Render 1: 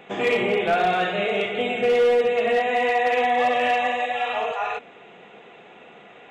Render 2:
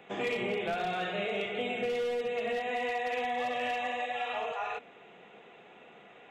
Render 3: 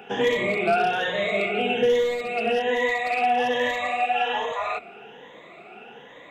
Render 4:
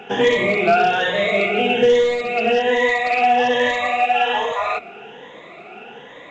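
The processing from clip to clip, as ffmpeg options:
-filter_complex "[0:a]acrossover=split=220|3000[a][b][c];[b]acompressor=threshold=-23dB:ratio=6[d];[a][d][c]amix=inputs=3:normalize=0,volume=-7.5dB"
-af "afftfilt=real='re*pow(10,14/40*sin(2*PI*(1.1*log(max(b,1)*sr/1024/100)/log(2)-(1.2)*(pts-256)/sr)))':imag='im*pow(10,14/40*sin(2*PI*(1.1*log(max(b,1)*sr/1024/100)/log(2)-(1.2)*(pts-256)/sr)))':win_size=1024:overlap=0.75,bandreject=f=60:t=h:w=6,bandreject=f=120:t=h:w=6,bandreject=f=180:t=h:w=6,volume=7dB"
-af "volume=6dB" -ar 16000 -c:a pcm_mulaw

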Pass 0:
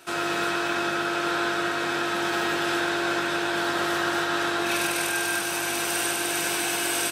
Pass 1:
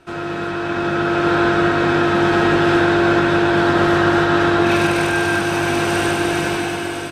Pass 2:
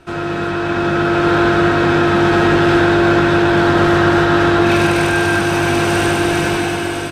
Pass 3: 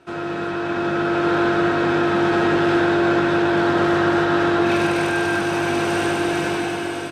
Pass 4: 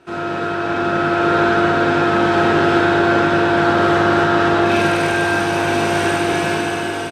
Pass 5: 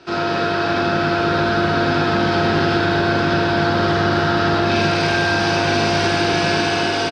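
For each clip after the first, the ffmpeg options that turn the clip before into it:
-af "aemphasis=mode=reproduction:type=riaa,dynaudnorm=f=270:g=7:m=10dB"
-filter_complex "[0:a]lowshelf=f=110:g=6.5,asplit=2[a][b];[b]asoftclip=type=hard:threshold=-17.5dB,volume=-6dB[c];[a][c]amix=inputs=2:normalize=0"
-af "crystalizer=i=8:c=0,bandpass=f=380:t=q:w=0.52:csg=0,volume=-5.5dB"
-af "aecho=1:1:38|51:0.596|0.668,volume=1.5dB"
-filter_complex "[0:a]acrossover=split=230[a][b];[b]acompressor=threshold=-20dB:ratio=10[c];[a][c]amix=inputs=2:normalize=0,lowpass=f=4.9k:t=q:w=4.3,asplit=2[d][e];[e]adelay=80,highpass=300,lowpass=3.4k,asoftclip=type=hard:threshold=-19dB,volume=-8dB[f];[d][f]amix=inputs=2:normalize=0,volume=3.5dB"

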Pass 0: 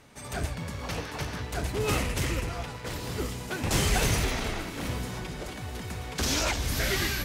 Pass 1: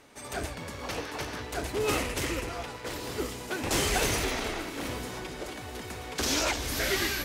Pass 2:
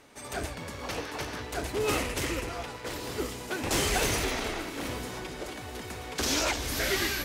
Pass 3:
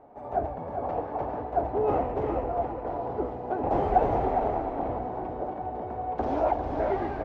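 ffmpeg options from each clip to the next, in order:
-af "lowshelf=f=230:t=q:w=1.5:g=-6.5"
-af "asoftclip=type=hard:threshold=-19dB"
-af "lowpass=f=750:t=q:w=4.5,aecho=1:1:402:0.447"

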